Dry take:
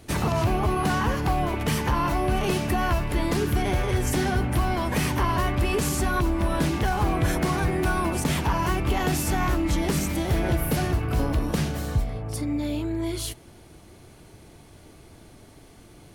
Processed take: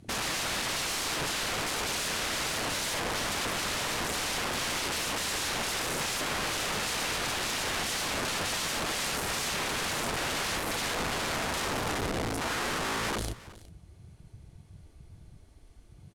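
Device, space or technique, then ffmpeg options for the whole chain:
overflowing digital effects unit: -filter_complex "[0:a]asettb=1/sr,asplit=3[link_01][link_02][link_03];[link_01]atrim=end=6.844[link_04];[link_02]atrim=start=6.84:end=8.64,asetpts=PTS-STARTPTS,afade=type=in:duration=0.004:curve=qsin,afade=type=out:start_time=1.796:duration=0.004:curve=qsin,aemphasis=mode=reproduction:type=75fm[link_05];[link_03]atrim=start=8.636[link_06];[link_04][link_05]acrossfade=duration=0.004:curve1=hsin:curve2=qsin[link_07];[link_07][link_06]acrossfade=duration=0.004:curve1=qsin:curve2=hsin,afwtdn=0.02,highshelf=frequency=3500:gain=3,aeval=exprs='(mod(28.2*val(0)+1,2)-1)/28.2':channel_layout=same,lowpass=11000,aecho=1:1:368:0.112,volume=2.5dB"

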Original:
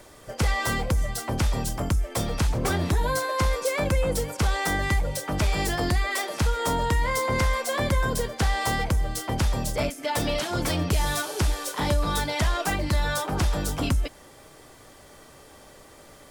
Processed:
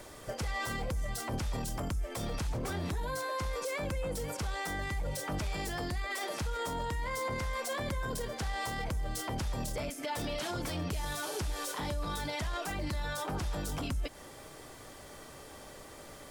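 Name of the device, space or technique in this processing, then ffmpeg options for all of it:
stacked limiters: -af "alimiter=limit=-18.5dB:level=0:latency=1:release=273,alimiter=level_in=0.5dB:limit=-24dB:level=0:latency=1:release=13,volume=-0.5dB,alimiter=level_in=4dB:limit=-24dB:level=0:latency=1:release=127,volume=-4dB"

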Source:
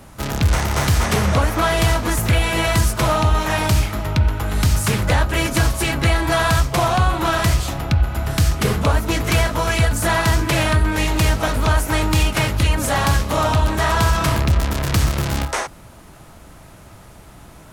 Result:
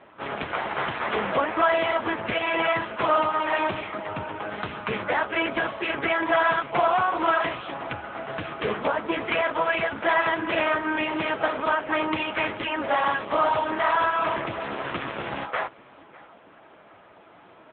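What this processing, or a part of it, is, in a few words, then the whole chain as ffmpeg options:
satellite phone: -af "highpass=340,lowpass=3300,aecho=1:1:598:0.0708" -ar 8000 -c:a libopencore_amrnb -b:a 6700

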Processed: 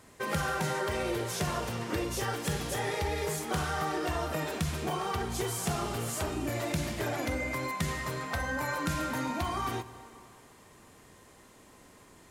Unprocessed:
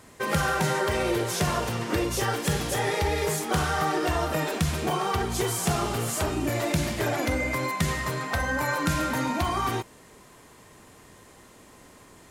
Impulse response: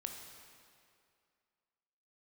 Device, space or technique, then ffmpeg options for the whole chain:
compressed reverb return: -filter_complex "[0:a]asplit=2[link_01][link_02];[1:a]atrim=start_sample=2205[link_03];[link_02][link_03]afir=irnorm=-1:irlink=0,acompressor=threshold=-30dB:ratio=6,volume=-3.5dB[link_04];[link_01][link_04]amix=inputs=2:normalize=0,volume=-8dB"

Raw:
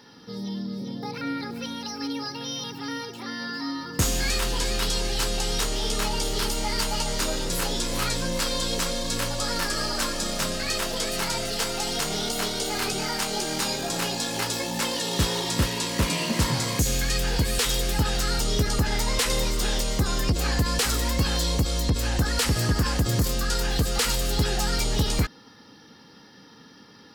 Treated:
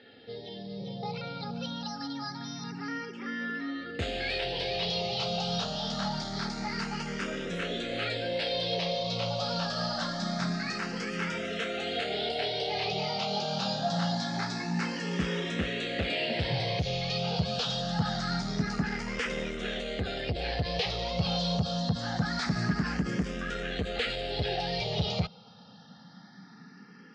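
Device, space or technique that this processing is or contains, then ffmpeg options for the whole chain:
barber-pole phaser into a guitar amplifier: -filter_complex "[0:a]asplit=2[link_01][link_02];[link_02]afreqshift=0.25[link_03];[link_01][link_03]amix=inputs=2:normalize=1,asoftclip=type=tanh:threshold=-22dB,highpass=100,equalizer=frequency=180:width_type=q:width=4:gain=7,equalizer=frequency=310:width_type=q:width=4:gain=-8,equalizer=frequency=700:width_type=q:width=4:gain=7,equalizer=frequency=1000:width_type=q:width=4:gain=-9,lowpass=frequency=4400:width=0.5412,lowpass=frequency=4400:width=1.3066,volume=1dB"

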